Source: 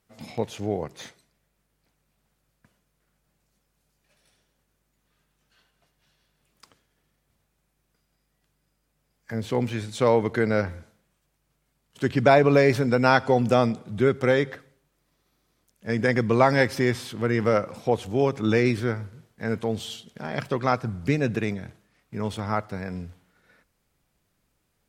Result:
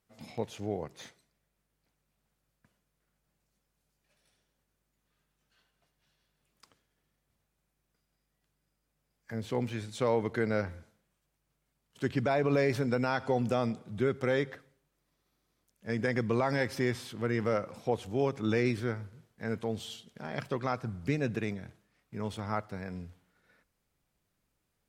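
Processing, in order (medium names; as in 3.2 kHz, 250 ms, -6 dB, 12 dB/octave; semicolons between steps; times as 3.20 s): peak limiter -10.5 dBFS, peak gain reduction 7 dB; trim -7 dB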